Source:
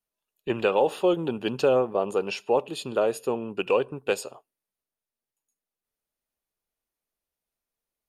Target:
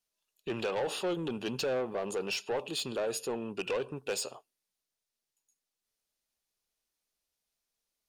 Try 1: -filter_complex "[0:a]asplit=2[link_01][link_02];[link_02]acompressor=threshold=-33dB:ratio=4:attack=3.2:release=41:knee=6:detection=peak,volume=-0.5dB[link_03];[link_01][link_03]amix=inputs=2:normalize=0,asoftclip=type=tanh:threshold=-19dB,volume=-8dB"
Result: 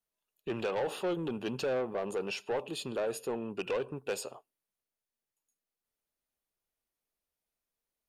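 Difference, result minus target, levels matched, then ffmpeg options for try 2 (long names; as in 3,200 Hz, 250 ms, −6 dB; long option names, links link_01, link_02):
4,000 Hz band −4.5 dB
-filter_complex "[0:a]asplit=2[link_01][link_02];[link_02]acompressor=threshold=-33dB:ratio=4:attack=3.2:release=41:knee=6:detection=peak,equalizer=frequency=5300:width_type=o:width=2.5:gain=14.5,volume=-0.5dB[link_03];[link_01][link_03]amix=inputs=2:normalize=0,asoftclip=type=tanh:threshold=-19dB,volume=-8dB"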